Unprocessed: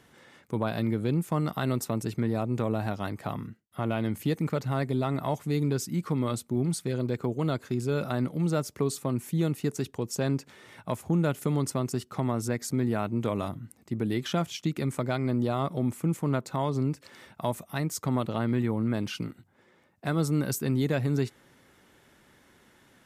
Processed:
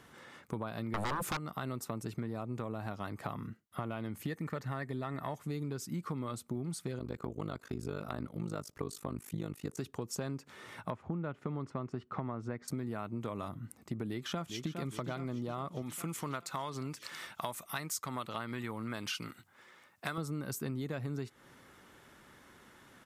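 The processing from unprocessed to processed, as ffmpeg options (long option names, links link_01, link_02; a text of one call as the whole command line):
ffmpeg -i in.wav -filter_complex "[0:a]asettb=1/sr,asplit=3[link_01][link_02][link_03];[link_01]atrim=end=0.944[link_04];[link_02]atrim=start=0.94:end=1.37,asetpts=PTS-STARTPTS,afade=type=in:duration=0.004:curve=qsin,afade=type=out:start_time=0.426:duration=0.004:curve=qsin,aeval=exprs='0.178*sin(PI/2*7.08*val(0)/0.178)':channel_layout=same[link_05];[link_03]atrim=start=1.366[link_06];[link_04][link_05]acrossfade=duration=0.004:curve1=hsin:curve2=qsin[link_07];[link_07][link_06]acrossfade=duration=0.004:curve1=qsin:curve2=hsin,asettb=1/sr,asplit=3[link_08][link_09][link_10];[link_08]atrim=end=4.254[link_11];[link_09]atrim=start=4.25:end=5.38,asetpts=PTS-STARTPTS,afade=type=in:duration=0.004:curve=qsin,afade=type=out:start_time=1.126:duration=0.004:curve=qsin,equalizer=frequency=1800:width=6.2:gain=12[link_12];[link_10]atrim=start=5.376[link_13];[link_11][link_12]acrossfade=duration=0.004:curve1=hsin:curve2=qsin[link_14];[link_14][link_13]acrossfade=duration=0.004:curve1=qsin:curve2=hsin,asettb=1/sr,asplit=3[link_15][link_16][link_17];[link_15]atrim=end=6.994[link_18];[link_16]atrim=start=6.99:end=9.78,asetpts=PTS-STARTPTS,afade=type=in:duration=0.004:curve=qsin,afade=type=out:start_time=2.786:duration=0.004:curve=qsin,tremolo=f=51:d=0.974[link_19];[link_17]atrim=start=9.776[link_20];[link_18][link_19]acrossfade=duration=0.004:curve1=hsin:curve2=qsin[link_21];[link_21][link_20]acrossfade=duration=0.004:curve1=qsin:curve2=hsin,asettb=1/sr,asplit=3[link_22][link_23][link_24];[link_22]atrim=end=10.904[link_25];[link_23]atrim=start=10.9:end=12.68,asetpts=PTS-STARTPTS,afade=type=in:duration=0.004:curve=qsin,afade=type=out:start_time=1.776:duration=0.004:curve=qsin,lowpass=2300[link_26];[link_24]atrim=start=12.676[link_27];[link_25][link_26]acrossfade=duration=0.004:curve1=hsin:curve2=qsin[link_28];[link_28][link_27]acrossfade=duration=0.004:curve1=qsin:curve2=hsin,asplit=2[link_29][link_30];[link_30]afade=type=in:start_time=14.08:duration=0.01,afade=type=out:start_time=14.79:duration=0.01,aecho=0:1:410|820|1230|1640|2050|2460|2870:0.354813|0.212888|0.127733|0.0766397|0.0459838|0.0275903|0.0165542[link_31];[link_29][link_31]amix=inputs=2:normalize=0,asettb=1/sr,asplit=3[link_32][link_33][link_34];[link_32]atrim=end=15.824[link_35];[link_33]atrim=start=15.82:end=20.18,asetpts=PTS-STARTPTS,afade=type=in:duration=0.004:curve=qsin,afade=type=out:start_time=4.356:duration=0.004:curve=qsin,tiltshelf=frequency=870:gain=-7.5[link_36];[link_34]atrim=start=20.176[link_37];[link_35][link_36]acrossfade=duration=0.004:curve1=hsin:curve2=qsin[link_38];[link_38][link_37]acrossfade=duration=0.004:curve1=qsin:curve2=hsin,equalizer=frequency=1200:width=2.3:gain=5.5,acompressor=threshold=-35dB:ratio=6" out.wav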